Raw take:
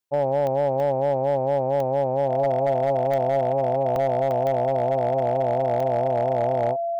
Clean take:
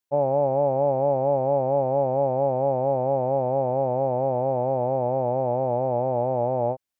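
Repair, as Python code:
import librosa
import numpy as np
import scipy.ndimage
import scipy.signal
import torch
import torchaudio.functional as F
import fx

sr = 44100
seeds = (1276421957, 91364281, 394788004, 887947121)

y = fx.fix_declip(x, sr, threshold_db=-15.5)
y = fx.fix_declick_ar(y, sr, threshold=10.0)
y = fx.notch(y, sr, hz=680.0, q=30.0)
y = fx.fix_interpolate(y, sr, at_s=(0.8, 3.96, 4.31), length_ms=1.1)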